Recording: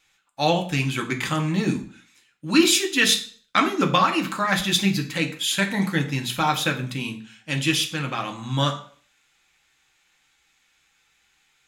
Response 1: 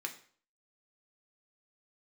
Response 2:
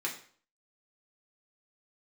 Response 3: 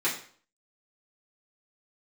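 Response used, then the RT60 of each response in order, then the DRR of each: 1; 0.50, 0.50, 0.50 seconds; 3.0, −3.0, −9.0 decibels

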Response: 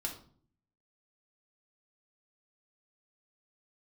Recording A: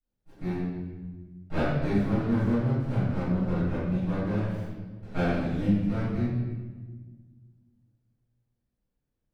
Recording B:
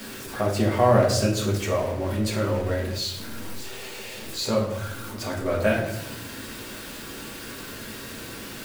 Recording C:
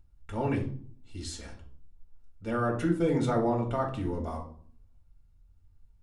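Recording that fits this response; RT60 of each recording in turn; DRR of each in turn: C; 1.4, 0.80, 0.50 seconds; −17.5, −3.5, 0.0 decibels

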